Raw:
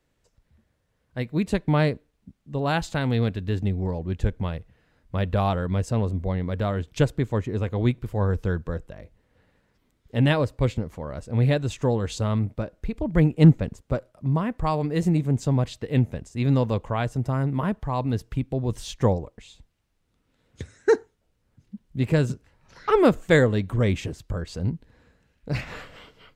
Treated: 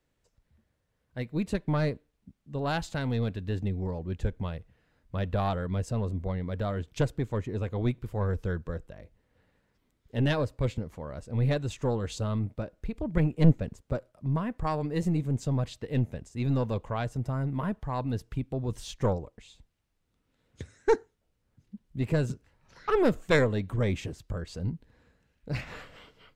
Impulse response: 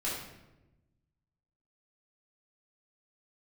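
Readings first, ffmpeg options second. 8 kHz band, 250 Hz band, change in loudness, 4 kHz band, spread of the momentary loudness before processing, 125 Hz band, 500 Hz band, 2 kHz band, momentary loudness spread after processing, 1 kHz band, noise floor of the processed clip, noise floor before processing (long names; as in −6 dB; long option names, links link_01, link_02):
−5.0 dB, −6.0 dB, −6.0 dB, −5.5 dB, 12 LU, −6.0 dB, −5.5 dB, −5.5 dB, 11 LU, −5.5 dB, −76 dBFS, −71 dBFS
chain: -af "aeval=exprs='0.631*(cos(1*acos(clip(val(0)/0.631,-1,1)))-cos(1*PI/2))+0.282*(cos(2*acos(clip(val(0)/0.631,-1,1)))-cos(2*PI/2))':channel_layout=same,volume=-5dB"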